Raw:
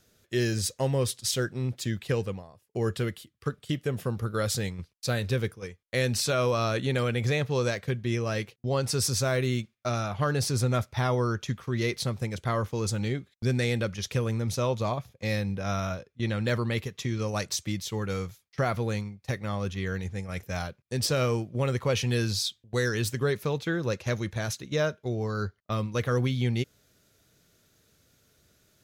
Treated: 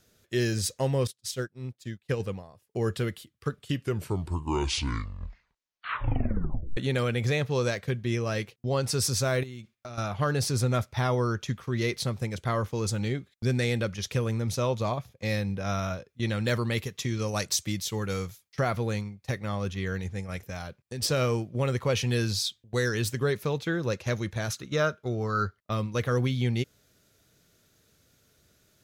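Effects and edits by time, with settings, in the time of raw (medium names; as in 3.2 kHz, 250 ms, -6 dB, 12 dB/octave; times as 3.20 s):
1.07–2.20 s: upward expansion 2.5:1, over -42 dBFS
3.56 s: tape stop 3.21 s
9.43–9.98 s: compression 8:1, threshold -37 dBFS
16.08–18.60 s: treble shelf 4.6 kHz +6 dB
20.36–21.02 s: compression 3:1, threshold -33 dBFS
24.50–25.58 s: peaking EQ 1.3 kHz +12.5 dB 0.27 oct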